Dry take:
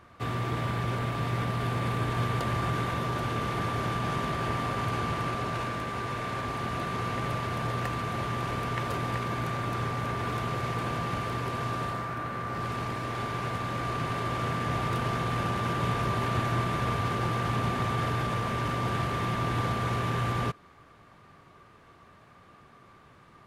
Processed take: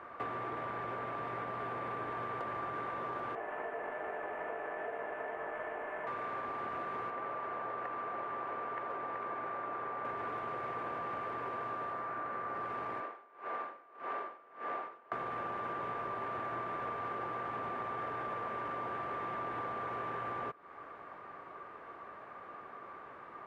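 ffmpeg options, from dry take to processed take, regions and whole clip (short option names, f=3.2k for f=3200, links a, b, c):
-filter_complex "[0:a]asettb=1/sr,asplit=3[a][b][c];[a]atrim=end=3.354[d];[b]atrim=start=3.35:end=6.07,asetpts=PTS-STARTPTS,afade=t=in:d=0.004:c=qsin,afade=t=out:st=2.716:d=0.004:c=qsin,flanger=delay=18:depth=3.1:speed=2.5,aeval=exprs='val(0)*sin(2*PI*570*n/s)':c=same,asuperstop=centerf=4800:order=4:qfactor=1.1[e];[c]atrim=start=6.066[f];[d][e]acrossfade=d=0.004:c1=hsin:c2=qsin[g];[g][f]acrossfade=d=0.004:c1=qsin:c2=hsin,asettb=1/sr,asplit=3[h][i][j];[h]atrim=end=7.104[k];[i]atrim=start=7.1:end=10.05,asetpts=PTS-STARTPTS,afade=t=in:d=0.004:c=qsin,afade=t=out:st=2.946:d=0.004:c=qsin,lowpass=f=1.8k:p=1,lowshelf=f=210:g=-11.5[l];[j]atrim=start=10.046[m];[k][l]acrossfade=d=0.004:c1=hsin:c2=qsin[n];[n][m]acrossfade=d=0.004:c1=qsin:c2=hsin,asettb=1/sr,asplit=3[o][p][q];[o]atrim=end=13.004[r];[p]atrim=start=13:end=15.12,asetpts=PTS-STARTPTS,afade=t=in:d=0.004:c=qsin,afade=t=out:st=2.116:d=0.004:c=qsin,highpass=320,adynamicsmooth=sensitivity=5.5:basefreq=3.6k,aeval=exprs='val(0)*pow(10,-34*(0.5-0.5*cos(2*PI*1.7*n/s))/20)':c=same[s];[q]atrim=start=15.116[t];[r][s]acrossfade=d=0.004:c1=hsin:c2=qsin[u];[u][t]acrossfade=d=0.004:c1=qsin:c2=hsin,acrossover=split=330 2100:gain=0.1 1 0.0708[v][w][x];[v][w][x]amix=inputs=3:normalize=0,acompressor=threshold=-46dB:ratio=6,volume=8.5dB"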